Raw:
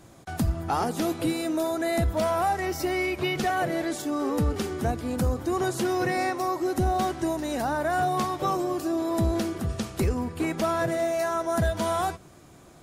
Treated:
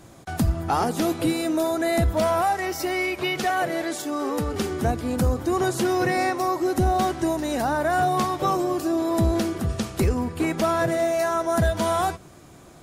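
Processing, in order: 2.41–4.54 s: bass shelf 250 Hz -9.5 dB; trim +3.5 dB

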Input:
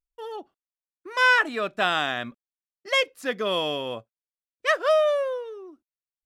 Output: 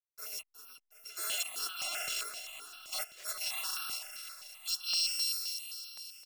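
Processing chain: bit-reversed sample order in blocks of 256 samples; treble shelf 8.9 kHz -6.5 dB; reverse; compression 6:1, threshold -31 dBFS, peak gain reduction 12 dB; reverse; high-pass sweep 400 Hz -> 3.8 kHz, 2.93–4.77 s; hysteresis with a dead band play -50.5 dBFS; overdrive pedal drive 8 dB, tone 7.5 kHz, clips at -18 dBFS; on a send: feedback delay 364 ms, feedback 55%, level -9 dB; on the sum: stepped phaser 7.7 Hz 240–2000 Hz; trim -2 dB

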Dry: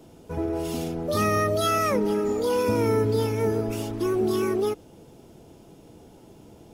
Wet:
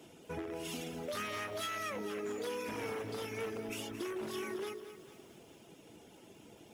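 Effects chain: one-sided wavefolder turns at -20.5 dBFS; frequency weighting D; reverb removal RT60 0.68 s; peaking EQ 4.4 kHz -9.5 dB 0.88 oct; de-hum 47.3 Hz, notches 16; compression 5:1, threshold -34 dBFS, peak gain reduction 13 dB; bit-crushed delay 222 ms, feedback 55%, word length 9-bit, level -11 dB; trim -4 dB

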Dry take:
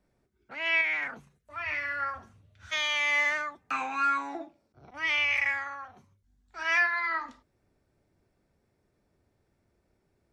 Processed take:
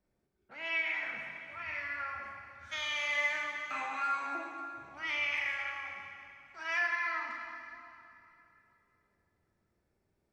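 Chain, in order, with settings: plate-style reverb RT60 2.9 s, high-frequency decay 0.85×, DRR 0.5 dB; trim -8.5 dB

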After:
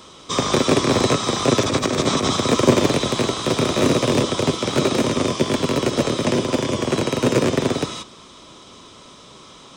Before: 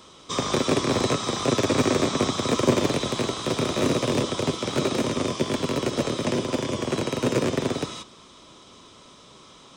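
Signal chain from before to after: 1.61–2.37 s: compressor with a negative ratio -24 dBFS, ratio -0.5; trim +5.5 dB

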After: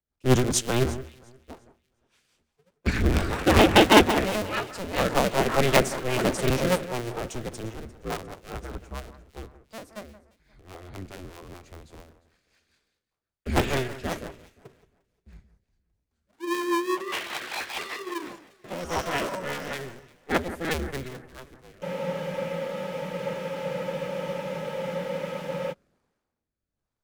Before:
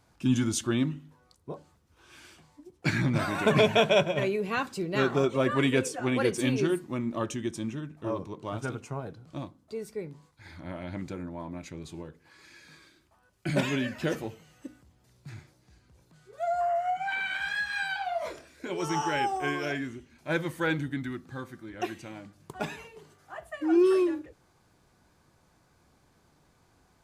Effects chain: cycle switcher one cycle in 2, inverted; rotary cabinet horn 5 Hz, later 1.2 Hz, at 21.19 s; on a send: echo whose repeats swap between lows and highs 176 ms, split 2 kHz, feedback 63%, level -10.5 dB; on the sum: spectral freeze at 21.86 s, 3.85 s; three bands expanded up and down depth 70%; trim +2 dB

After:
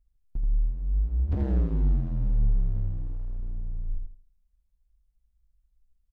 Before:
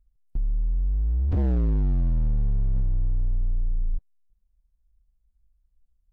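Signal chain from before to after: feedback delay 82 ms, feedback 28%, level -4.5 dB; trim -3.5 dB

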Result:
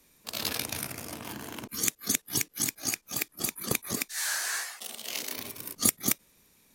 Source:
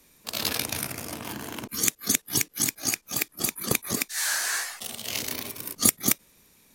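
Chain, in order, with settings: 4.23–5.37 s: high-pass 270 Hz 12 dB/octave; trim -4 dB

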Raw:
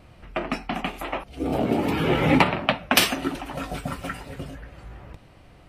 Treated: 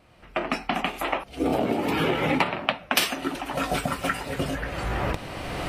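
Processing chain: recorder AGC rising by 17 dB/s; bass shelf 190 Hz -9.5 dB; trim -4 dB

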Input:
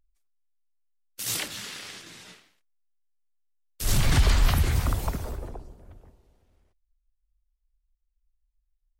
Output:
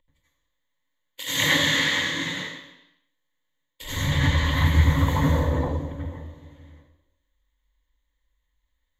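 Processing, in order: rippled EQ curve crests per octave 1.1, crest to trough 14 dB; reverse; compression 8:1, threshold -30 dBFS, peak gain reduction 18 dB; reverse; reverberation RT60 0.85 s, pre-delay 80 ms, DRR -6.5 dB

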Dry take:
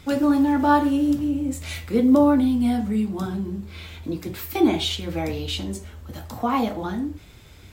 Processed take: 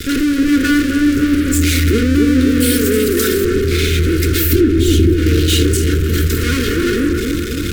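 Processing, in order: comb filter that takes the minimum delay 2.8 ms; 2.60–3.45 s: RIAA curve recording; in parallel at -4 dB: fuzz box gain 47 dB, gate -49 dBFS; 4.52–5.14 s: on the sum: resonant low shelf 460 Hz +13.5 dB, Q 1.5; compression 5:1, threshold -13 dBFS, peak gain reduction 16.5 dB; elliptic band-stop 460–1400 Hz, stop band 60 dB; on a send: feedback echo behind a low-pass 268 ms, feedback 65%, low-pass 1.4 kHz, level -4 dB; on the sum: trim +2 dB

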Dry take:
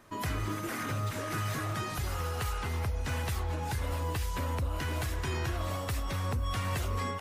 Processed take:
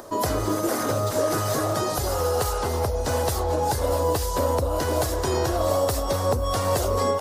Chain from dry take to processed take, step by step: FFT filter 180 Hz 0 dB, 560 Hz +15 dB, 2.4 kHz -6 dB, 4.7 kHz +8 dB; upward compressor, threshold -42 dBFS; trim +4.5 dB

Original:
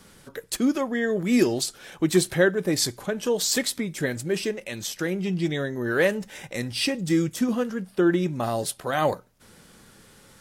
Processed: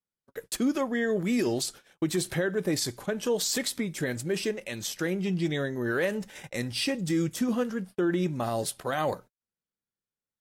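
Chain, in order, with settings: gate -40 dBFS, range -44 dB; peak limiter -16.5 dBFS, peak gain reduction 9.5 dB; trim -2 dB

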